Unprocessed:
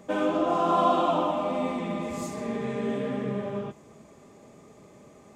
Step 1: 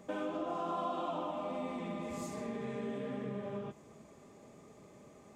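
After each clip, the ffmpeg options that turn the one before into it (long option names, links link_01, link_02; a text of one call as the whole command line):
ffmpeg -i in.wav -af "acompressor=threshold=-33dB:ratio=2.5,volume=-5dB" out.wav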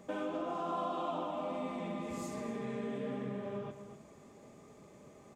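ffmpeg -i in.wav -filter_complex "[0:a]asplit=2[link_01][link_02];[link_02]adelay=244.9,volume=-10dB,highshelf=frequency=4000:gain=-5.51[link_03];[link_01][link_03]amix=inputs=2:normalize=0" out.wav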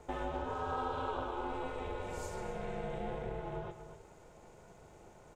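ffmpeg -i in.wav -af "aeval=exprs='val(0)*sin(2*PI*250*n/s)':channel_layout=same,volume=2.5dB" out.wav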